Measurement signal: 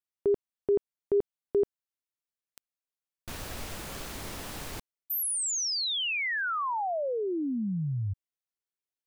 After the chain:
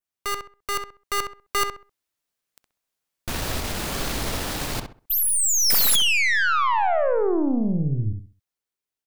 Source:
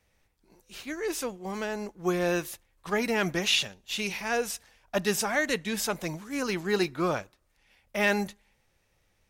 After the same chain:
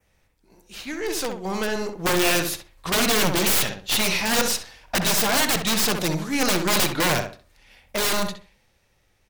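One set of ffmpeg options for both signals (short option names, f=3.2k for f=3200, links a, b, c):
-filter_complex "[0:a]adynamicequalizer=threshold=0.00398:dfrequency=4200:dqfactor=1.8:tfrequency=4200:tqfactor=1.8:attack=5:release=100:ratio=0.438:range=4:mode=boostabove:tftype=bell,aeval=exprs='(mod(13.3*val(0)+1,2)-1)/13.3':c=same,aeval=exprs='0.0794*(cos(1*acos(clip(val(0)/0.0794,-1,1)))-cos(1*PI/2))+0.02*(cos(2*acos(clip(val(0)/0.0794,-1,1)))-cos(2*PI/2))+0.00891*(cos(5*acos(clip(val(0)/0.0794,-1,1)))-cos(5*PI/2))+0.00282*(cos(6*acos(clip(val(0)/0.0794,-1,1)))-cos(6*PI/2))':c=same,dynaudnorm=f=230:g=13:m=7dB,asplit=2[a][b];[b]adelay=65,lowpass=f=2.2k:p=1,volume=-5.5dB,asplit=2[c][d];[d]adelay=65,lowpass=f=2.2k:p=1,volume=0.29,asplit=2[e][f];[f]adelay=65,lowpass=f=2.2k:p=1,volume=0.29,asplit=2[g][h];[h]adelay=65,lowpass=f=2.2k:p=1,volume=0.29[i];[c][e][g][i]amix=inputs=4:normalize=0[j];[a][j]amix=inputs=2:normalize=0"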